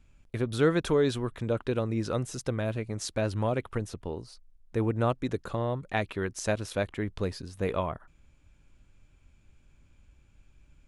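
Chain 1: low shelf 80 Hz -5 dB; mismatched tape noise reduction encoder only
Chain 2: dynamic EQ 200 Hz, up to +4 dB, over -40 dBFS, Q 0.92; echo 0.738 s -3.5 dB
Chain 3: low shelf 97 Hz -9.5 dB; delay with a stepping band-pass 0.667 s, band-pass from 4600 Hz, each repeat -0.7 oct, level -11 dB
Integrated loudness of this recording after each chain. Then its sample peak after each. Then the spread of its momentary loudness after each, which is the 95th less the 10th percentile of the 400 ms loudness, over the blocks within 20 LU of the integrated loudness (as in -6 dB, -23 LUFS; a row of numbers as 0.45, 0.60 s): -31.0, -28.0, -31.5 LUFS; -12.5, -10.0, -13.0 dBFS; 10, 9, 12 LU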